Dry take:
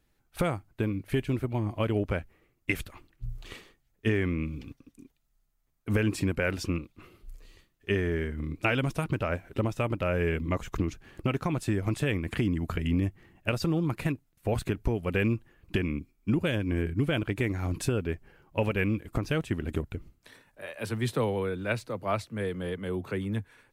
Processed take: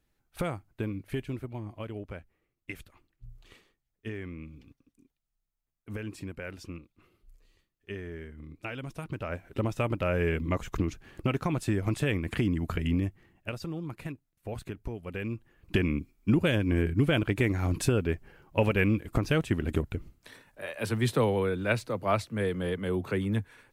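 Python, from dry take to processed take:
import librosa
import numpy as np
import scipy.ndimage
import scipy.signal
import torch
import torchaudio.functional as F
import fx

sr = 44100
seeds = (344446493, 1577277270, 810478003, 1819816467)

y = fx.gain(x, sr, db=fx.line((0.97, -4.0), (1.95, -11.5), (8.77, -11.5), (9.73, 0.0), (12.88, 0.0), (13.63, -9.0), (15.23, -9.0), (15.79, 2.5)))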